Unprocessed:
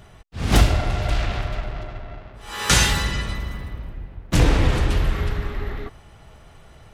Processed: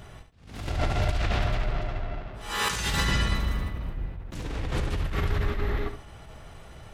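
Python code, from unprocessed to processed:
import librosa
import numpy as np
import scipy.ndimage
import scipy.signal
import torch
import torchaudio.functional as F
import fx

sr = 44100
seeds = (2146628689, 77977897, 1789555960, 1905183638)

y = fx.over_compress(x, sr, threshold_db=-24.0, ratio=-1.0)
y = fx.echo_feedback(y, sr, ms=71, feedback_pct=23, wet_db=-9.0)
y = fx.attack_slew(y, sr, db_per_s=100.0)
y = F.gain(torch.from_numpy(y), -2.5).numpy()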